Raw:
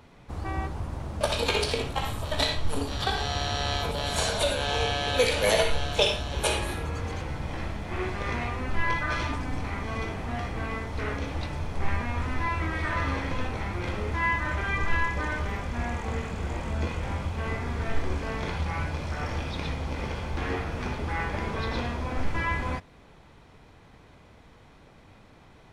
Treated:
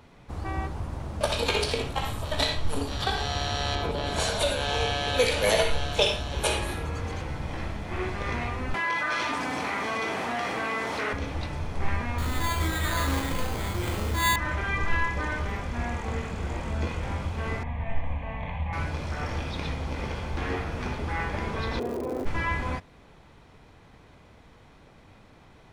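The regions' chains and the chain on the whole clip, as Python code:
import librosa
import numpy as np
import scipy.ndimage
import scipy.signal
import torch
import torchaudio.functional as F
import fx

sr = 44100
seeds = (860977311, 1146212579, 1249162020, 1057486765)

y = fx.chain(x, sr, fx.lowpass(hz=3300.0, slope=6),
    fx.peak_eq(hz=340.0, db=6.5, octaves=0.7), at=(3.75, 4.2))
y = fx.chain(y, sr, fx.highpass(hz=190.0, slope=12),
    fx.low_shelf(hz=320.0, db=-9.5),
    fx.env_flatten(amount_pct=70), at=(8.74, 11.13))
y = fx.chain(y, sr, fx.doubler(ms=37.0, db=-4.5),
    fx.resample_bad(factor=8, down='none', up='hold'), at=(12.18, 14.36))
y = fx.chain(y, sr, fx.lowpass(hz=2500.0, slope=12),
    fx.fixed_phaser(hz=1400.0, stages=6), at=(17.63, 18.73))
y = fx.bandpass_q(y, sr, hz=400.0, q=3.7, at=(21.78, 22.25), fade=0.02)
y = fx.dmg_crackle(y, sr, seeds[0], per_s=180.0, level_db=-47.0, at=(21.78, 22.25), fade=0.02)
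y = fx.env_flatten(y, sr, amount_pct=50, at=(21.78, 22.25), fade=0.02)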